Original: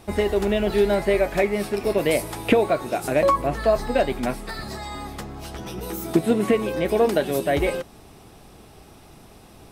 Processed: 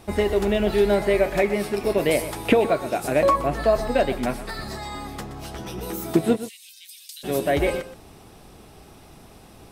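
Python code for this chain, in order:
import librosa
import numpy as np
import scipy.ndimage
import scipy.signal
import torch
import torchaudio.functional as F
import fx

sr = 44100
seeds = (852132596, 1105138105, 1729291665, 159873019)

y = fx.cheby2_highpass(x, sr, hz=860.0, order=4, stop_db=70, at=(6.35, 7.23), fade=0.02)
y = y + 10.0 ** (-13.5 / 20.0) * np.pad(y, (int(123 * sr / 1000.0), 0))[:len(y)]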